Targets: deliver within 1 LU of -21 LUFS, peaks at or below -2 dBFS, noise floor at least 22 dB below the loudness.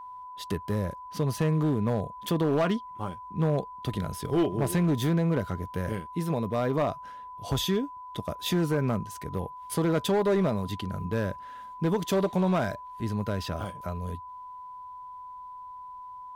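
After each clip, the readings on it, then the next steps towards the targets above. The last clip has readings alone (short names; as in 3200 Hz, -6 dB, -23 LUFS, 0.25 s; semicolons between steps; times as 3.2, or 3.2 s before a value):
clipped 1.7%; flat tops at -19.5 dBFS; steady tone 1000 Hz; tone level -40 dBFS; loudness -29.0 LUFS; peak -19.5 dBFS; loudness target -21.0 LUFS
-> clip repair -19.5 dBFS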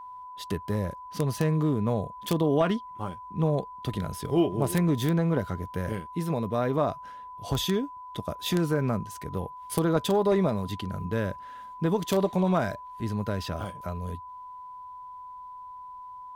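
clipped 0.0%; steady tone 1000 Hz; tone level -40 dBFS
-> notch 1000 Hz, Q 30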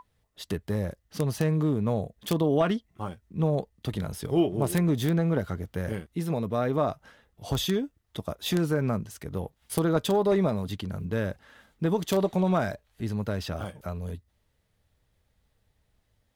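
steady tone none; loudness -28.5 LUFS; peak -10.5 dBFS; loudness target -21.0 LUFS
-> gain +7.5 dB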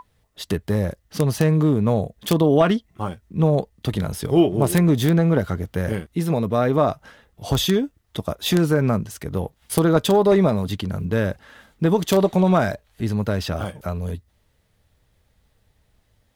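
loudness -21.0 LUFS; peak -3.0 dBFS; noise floor -65 dBFS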